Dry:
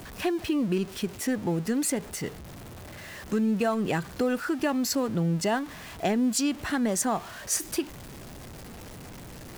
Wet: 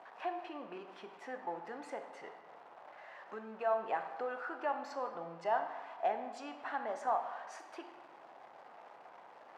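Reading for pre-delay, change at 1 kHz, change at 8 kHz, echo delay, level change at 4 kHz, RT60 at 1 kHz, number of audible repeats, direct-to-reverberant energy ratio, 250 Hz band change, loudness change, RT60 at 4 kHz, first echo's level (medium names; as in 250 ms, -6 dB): 14 ms, -2.0 dB, under -30 dB, no echo, -20.5 dB, 1.4 s, no echo, 6.0 dB, -24.5 dB, -11.5 dB, 0.90 s, no echo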